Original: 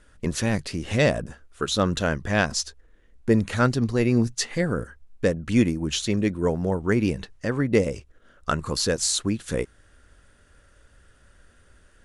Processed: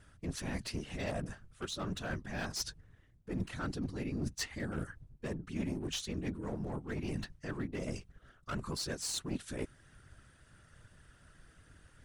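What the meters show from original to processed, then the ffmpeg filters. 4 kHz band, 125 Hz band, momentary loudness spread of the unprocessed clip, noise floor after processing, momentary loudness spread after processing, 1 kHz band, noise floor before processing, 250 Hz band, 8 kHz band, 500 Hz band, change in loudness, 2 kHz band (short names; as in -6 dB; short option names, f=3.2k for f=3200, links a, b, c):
-12.0 dB, -14.0 dB, 9 LU, -65 dBFS, 6 LU, -15.0 dB, -58 dBFS, -15.0 dB, -13.0 dB, -18.0 dB, -15.0 dB, -15.0 dB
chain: -af "areverse,acompressor=threshold=-29dB:ratio=16,areverse,equalizer=f=490:w=5.2:g=-9,aeval=exprs='clip(val(0),-1,0.0266)':c=same,bandreject=f=7k:w=26,afftfilt=real='hypot(re,im)*cos(2*PI*random(0))':imag='hypot(re,im)*sin(2*PI*random(1))':win_size=512:overlap=0.75,volume=2.5dB"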